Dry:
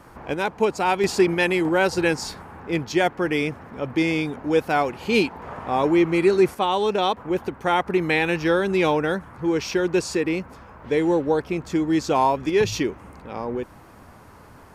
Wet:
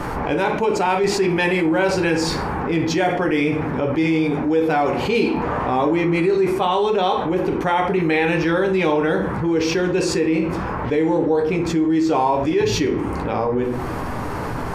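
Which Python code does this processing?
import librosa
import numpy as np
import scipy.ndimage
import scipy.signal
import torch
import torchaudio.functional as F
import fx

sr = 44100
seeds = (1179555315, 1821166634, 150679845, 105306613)

y = fx.high_shelf(x, sr, hz=6400.0, db=-8.5)
y = fx.room_shoebox(y, sr, seeds[0], volume_m3=41.0, walls='mixed', distance_m=0.44)
y = fx.env_flatten(y, sr, amount_pct=70)
y = y * librosa.db_to_amplitude(-6.5)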